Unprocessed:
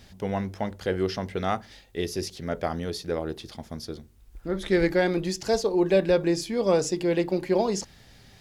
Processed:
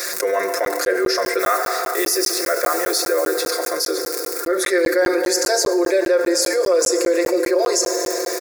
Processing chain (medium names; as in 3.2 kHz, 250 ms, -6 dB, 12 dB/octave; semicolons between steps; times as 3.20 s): 1.39–3.43 s: block-companded coder 5-bit; crackle 65 per s -40 dBFS; Bessel high-pass 530 Hz, order 8; treble shelf 7.1 kHz +7.5 dB; static phaser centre 830 Hz, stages 6; comb 5.7 ms, depth 90%; FDN reverb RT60 2.7 s, high-frequency decay 0.75×, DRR 10.5 dB; crackling interface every 0.20 s, samples 512, zero; level flattener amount 70%; trim +2.5 dB